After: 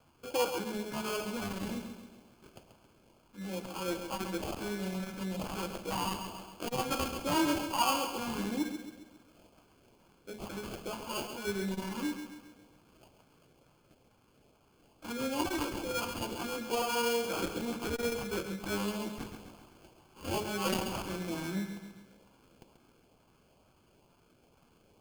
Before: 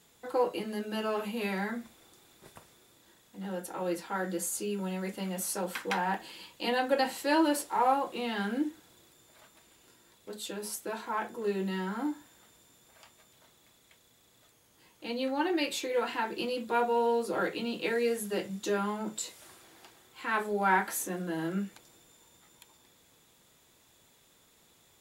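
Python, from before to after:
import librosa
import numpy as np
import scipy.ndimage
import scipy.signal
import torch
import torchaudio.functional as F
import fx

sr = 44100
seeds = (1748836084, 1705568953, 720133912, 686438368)

p1 = fx.sample_hold(x, sr, seeds[0], rate_hz=1900.0, jitter_pct=0)
p2 = fx.filter_lfo_notch(p1, sr, shape='saw_up', hz=2.2, low_hz=350.0, high_hz=1800.0, q=1.7)
p3 = p2 + fx.echo_feedback(p2, sr, ms=135, feedback_pct=48, wet_db=-8.5, dry=0)
p4 = fx.transformer_sat(p3, sr, knee_hz=640.0)
y = p4 * librosa.db_to_amplitude(-1.5)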